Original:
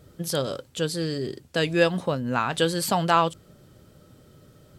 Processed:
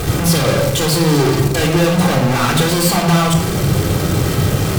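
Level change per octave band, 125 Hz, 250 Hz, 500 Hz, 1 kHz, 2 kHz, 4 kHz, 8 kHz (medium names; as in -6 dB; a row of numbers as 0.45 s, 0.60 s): +18.0 dB, +14.0 dB, +9.0 dB, +7.0 dB, +9.5 dB, +11.5 dB, +15.0 dB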